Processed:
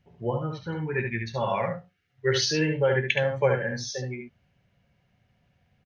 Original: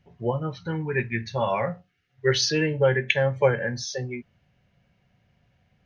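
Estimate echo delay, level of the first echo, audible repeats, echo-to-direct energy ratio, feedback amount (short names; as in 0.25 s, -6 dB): 71 ms, -5.0 dB, 1, -5.0 dB, no steady repeat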